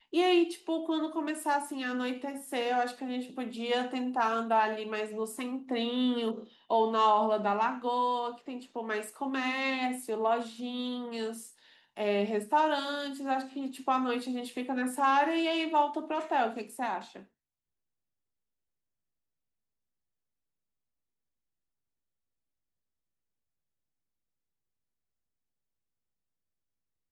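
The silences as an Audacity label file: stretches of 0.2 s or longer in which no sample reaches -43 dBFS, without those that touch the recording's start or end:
6.440000	6.700000	silence
11.490000	11.970000	silence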